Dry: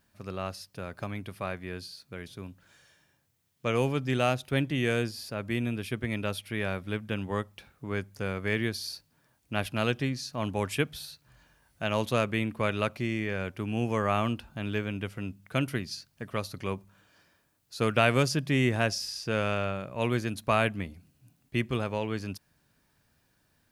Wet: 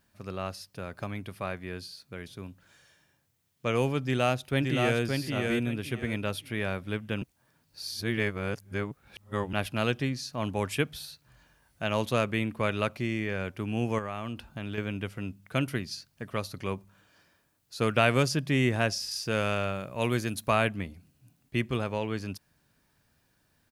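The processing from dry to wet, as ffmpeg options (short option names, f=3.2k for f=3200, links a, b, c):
-filter_complex "[0:a]asplit=2[a][b];[b]afade=t=in:st=4.04:d=0.01,afade=t=out:st=5.02:d=0.01,aecho=0:1:570|1140|1710|2280:0.668344|0.167086|0.0417715|0.0104429[c];[a][c]amix=inputs=2:normalize=0,asettb=1/sr,asplit=3[d][e][f];[d]atrim=end=13.984[g];[e]atrim=start=13.98:end=14.78,asetpts=PTS-STARTPTS,afade=t=in:d=0.004:c=qsin,afade=t=out:st=0.796:d=0.004:c=qsin,acompressor=threshold=-30dB:ratio=6:attack=3.2:release=140:knee=1:detection=peak[h];[f]atrim=start=14.776[i];[g][h]acrossfade=d=0.004:c1=hsin:c2=qsin[j];[j][i]acrossfade=d=0.004:c1=qsin:c2=hsin,asettb=1/sr,asplit=3[k][l][m];[k]atrim=end=19.114[n];[l]atrim=start=19.11:end=20.51,asetpts=PTS-STARTPTS,afade=t=in:d=0.004:c=qsin,afade=t=out:st=1.396:d=0.004:c=qsin,highshelf=f=5.9k:g=8.5[o];[m]atrim=start=20.506[p];[n][o]acrossfade=d=0.004:c1=hsin:c2=qsin[q];[q][p]acrossfade=d=0.004:c1=qsin:c2=hsin,asplit=3[r][s][t];[r]atrim=end=7.222[u];[s]atrim=start=7.218:end=9.532,asetpts=PTS-STARTPTS,areverse[v];[t]atrim=start=9.528[w];[u][v]acrossfade=d=0.004:c1=hsin:c2=hsin[x];[x][w]acrossfade=d=0.004:c1=hsin:c2=hsin"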